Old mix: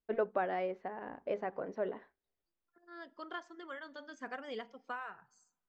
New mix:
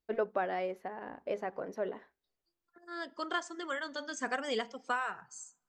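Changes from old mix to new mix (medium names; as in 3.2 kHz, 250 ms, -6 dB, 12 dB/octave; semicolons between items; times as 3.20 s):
second voice +7.5 dB; master: remove distance through air 180 m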